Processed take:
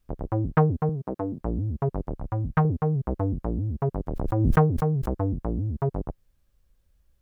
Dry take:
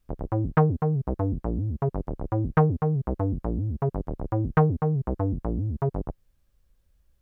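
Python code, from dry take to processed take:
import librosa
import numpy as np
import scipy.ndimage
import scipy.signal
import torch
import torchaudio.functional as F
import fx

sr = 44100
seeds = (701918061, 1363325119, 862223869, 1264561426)

y = fx.highpass(x, sr, hz=180.0, slope=12, at=(0.89, 1.41))
y = fx.peak_eq(y, sr, hz=390.0, db=-11.5, octaves=0.91, at=(2.15, 2.65))
y = fx.pre_swell(y, sr, db_per_s=33.0, at=(4.06, 5.08), fade=0.02)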